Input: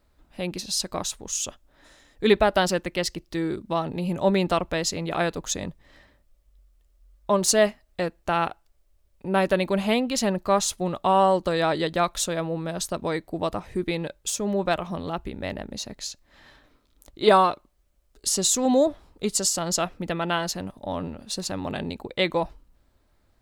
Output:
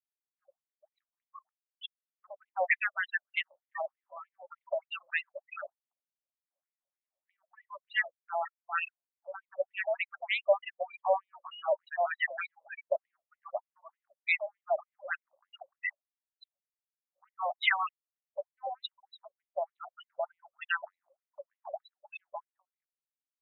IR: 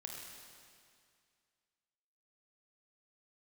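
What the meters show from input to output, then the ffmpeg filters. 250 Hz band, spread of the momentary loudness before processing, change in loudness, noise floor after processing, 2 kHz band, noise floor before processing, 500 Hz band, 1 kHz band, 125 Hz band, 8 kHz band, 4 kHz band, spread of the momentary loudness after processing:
below −40 dB, 13 LU, −9.0 dB, below −85 dBFS, −1.0 dB, −65 dBFS, −11.5 dB, −11.0 dB, below −40 dB, below −40 dB, −13.5 dB, 19 LU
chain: -filter_complex "[0:a]acrossover=split=1200[link_01][link_02];[link_02]adelay=400[link_03];[link_01][link_03]amix=inputs=2:normalize=0,acrossover=split=350|3600[link_04][link_05][link_06];[link_04]dynaudnorm=framelen=370:gausssize=13:maxgain=16dB[link_07];[link_07][link_05][link_06]amix=inputs=3:normalize=0,afftfilt=real='re*gte(hypot(re,im),0.0562)':imag='im*gte(hypot(re,im),0.0562)':win_size=1024:overlap=0.75,equalizer=frequency=125:width_type=o:width=1:gain=9,equalizer=frequency=250:width_type=o:width=1:gain=-9,equalizer=frequency=500:width_type=o:width=1:gain=9,equalizer=frequency=1000:width_type=o:width=1:gain=-10,equalizer=frequency=2000:width_type=o:width=1:gain=11,equalizer=frequency=4000:width_type=o:width=1:gain=-4,equalizer=frequency=8000:width_type=o:width=1:gain=7,acompressor=threshold=-21dB:ratio=3,afftfilt=real='re*between(b*sr/1024,760*pow(2900/760,0.5+0.5*sin(2*PI*3.3*pts/sr))/1.41,760*pow(2900/760,0.5+0.5*sin(2*PI*3.3*pts/sr))*1.41)':imag='im*between(b*sr/1024,760*pow(2900/760,0.5+0.5*sin(2*PI*3.3*pts/sr))/1.41,760*pow(2900/760,0.5+0.5*sin(2*PI*3.3*pts/sr))*1.41)':win_size=1024:overlap=0.75,volume=3dB"

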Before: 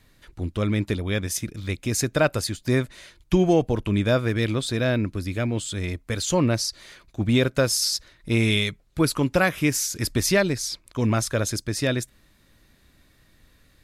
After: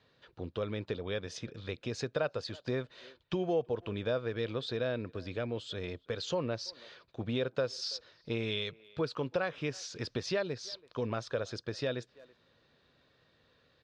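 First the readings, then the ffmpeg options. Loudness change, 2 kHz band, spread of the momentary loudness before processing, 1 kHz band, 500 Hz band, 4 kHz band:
−12.5 dB, −13.5 dB, 9 LU, −11.5 dB, −8.5 dB, −11.5 dB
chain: -filter_complex "[0:a]highpass=150,equalizer=frequency=200:width_type=q:width=4:gain=-7,equalizer=frequency=300:width_type=q:width=4:gain=-8,equalizer=frequency=480:width_type=q:width=4:gain=7,equalizer=frequency=2100:width_type=q:width=4:gain=-8,lowpass=frequency=4500:width=0.5412,lowpass=frequency=4500:width=1.3066,asplit=2[link_01][link_02];[link_02]adelay=330,highpass=300,lowpass=3400,asoftclip=type=hard:threshold=-16dB,volume=-27dB[link_03];[link_01][link_03]amix=inputs=2:normalize=0,acompressor=threshold=-30dB:ratio=2,volume=-4.5dB"

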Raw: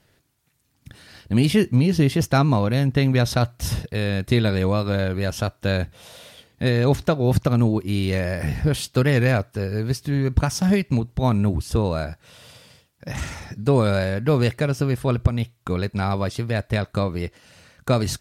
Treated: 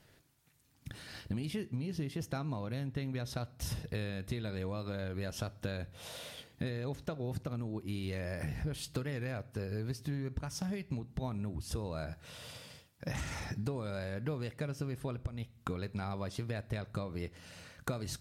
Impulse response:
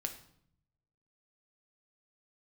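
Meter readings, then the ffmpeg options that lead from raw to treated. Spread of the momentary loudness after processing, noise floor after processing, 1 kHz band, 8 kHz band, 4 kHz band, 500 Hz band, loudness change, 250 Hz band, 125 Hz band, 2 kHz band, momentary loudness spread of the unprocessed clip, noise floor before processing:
7 LU, −65 dBFS, −18.0 dB, −13.0 dB, −15.0 dB, −18.0 dB, −17.5 dB, −17.5 dB, −17.0 dB, −16.5 dB, 8 LU, −65 dBFS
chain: -filter_complex "[0:a]acompressor=threshold=-31dB:ratio=16,asplit=2[link_01][link_02];[1:a]atrim=start_sample=2205[link_03];[link_02][link_03]afir=irnorm=-1:irlink=0,volume=-8.5dB[link_04];[link_01][link_04]amix=inputs=2:normalize=0,volume=-5dB"

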